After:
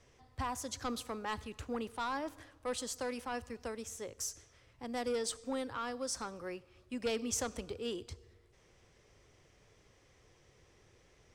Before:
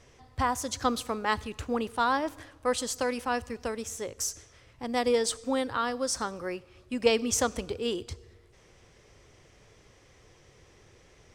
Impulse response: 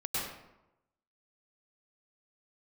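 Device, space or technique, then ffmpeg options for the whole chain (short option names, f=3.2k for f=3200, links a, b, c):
one-band saturation: -filter_complex "[0:a]acrossover=split=240|4800[a][b][c];[b]asoftclip=type=tanh:threshold=-23dB[d];[a][d][c]amix=inputs=3:normalize=0,volume=-7.5dB"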